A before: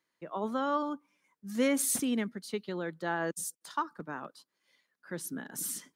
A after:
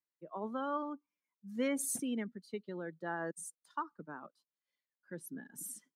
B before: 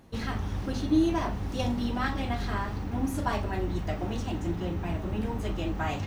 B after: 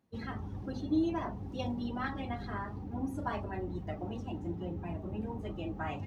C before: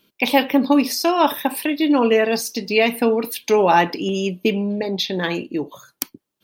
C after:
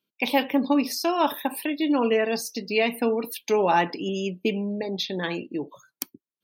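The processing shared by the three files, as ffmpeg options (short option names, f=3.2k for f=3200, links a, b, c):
-af "highpass=77,afftdn=nr=15:nf=-39,volume=-6dB"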